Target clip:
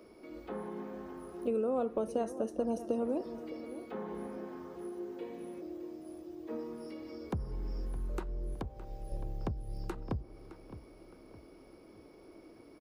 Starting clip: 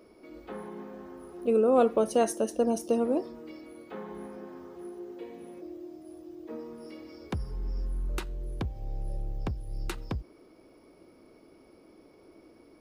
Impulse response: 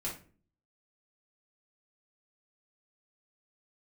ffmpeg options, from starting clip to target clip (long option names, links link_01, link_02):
-filter_complex "[0:a]asettb=1/sr,asplit=3[link_01][link_02][link_03];[link_01]atrim=end=8.544[link_04];[link_02]atrim=start=8.54:end=9.12,asetpts=PTS-STARTPTS,afade=type=in:duration=0.004:curve=qsin,afade=type=out:start_time=0.576:duration=0.004:curve=qsin,lowshelf=frequency=260:gain=-11[link_05];[link_03]atrim=start=9.116[link_06];[link_04][link_05]acrossfade=duration=0.004:curve1=hsin:curve2=qsin[link_07];[link_07][link_06]acrossfade=duration=0.004:curve1=qsin:curve2=hsin,acrossover=split=120|1300[link_08][link_09][link_10];[link_08]acompressor=threshold=-36dB:ratio=4[link_11];[link_09]acompressor=threshold=-31dB:ratio=4[link_12];[link_10]acompressor=threshold=-58dB:ratio=4[link_13];[link_11][link_12][link_13]amix=inputs=3:normalize=0,asplit=2[link_14][link_15];[link_15]adelay=614,lowpass=frequency=3400:poles=1,volume=-13.5dB,asplit=2[link_16][link_17];[link_17]adelay=614,lowpass=frequency=3400:poles=1,volume=0.42,asplit=2[link_18][link_19];[link_19]adelay=614,lowpass=frequency=3400:poles=1,volume=0.42,asplit=2[link_20][link_21];[link_21]adelay=614,lowpass=frequency=3400:poles=1,volume=0.42[link_22];[link_14][link_16][link_18][link_20][link_22]amix=inputs=5:normalize=0"